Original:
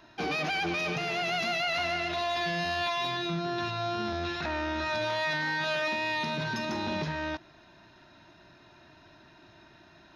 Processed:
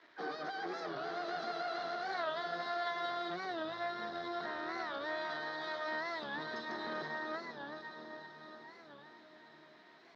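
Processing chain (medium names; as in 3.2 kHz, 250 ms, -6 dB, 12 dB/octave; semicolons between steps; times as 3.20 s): Butterworth band-stop 2.2 kHz, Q 0.59; echo that smears into a reverb 464 ms, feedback 67%, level -6 dB; valve stage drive 26 dB, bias 0.55; word length cut 10-bit, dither none; on a send at -24 dB: reverberation RT60 3.1 s, pre-delay 56 ms; on the sum: harmony voices +12 st -14 dB; cabinet simulation 500–3800 Hz, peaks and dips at 610 Hz -6 dB, 880 Hz -8 dB, 1.8 kHz +9 dB, 2.7 kHz -5 dB; warped record 45 rpm, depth 160 cents; trim +1.5 dB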